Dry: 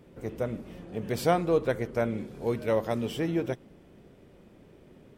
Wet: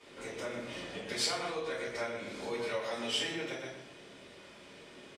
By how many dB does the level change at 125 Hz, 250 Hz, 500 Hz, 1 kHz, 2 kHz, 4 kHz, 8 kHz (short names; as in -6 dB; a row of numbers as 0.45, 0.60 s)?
-17.0, -12.0, -9.5, -7.5, +1.0, +8.5, +6.0 dB